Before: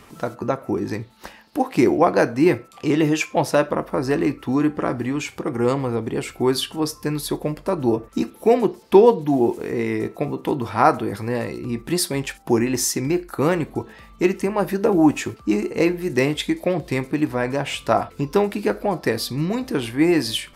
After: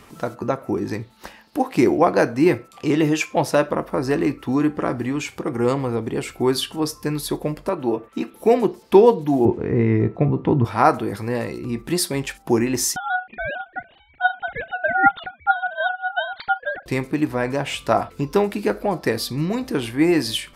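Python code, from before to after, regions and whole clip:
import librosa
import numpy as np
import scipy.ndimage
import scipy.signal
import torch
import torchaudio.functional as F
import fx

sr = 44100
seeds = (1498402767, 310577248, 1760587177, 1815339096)

y = fx.chain(x, sr, fx.highpass(hz=300.0, slope=6),
    fx.high_shelf_res(hz=4000.0, db=-7.0, q=1.5), at=(7.69, 8.34))
y = fx.chain(y, sr, fx.lowpass(hz=2300.0, slope=12),
    fx.peak_eq(hz=100.0, db=14.0, octaves=2.1), at=(9.45, 10.65))
y = fx.chain(y, sr, fx.sine_speech(),
    fx.ring_mod(carrier_hz=1100.0), at=(12.96, 16.86))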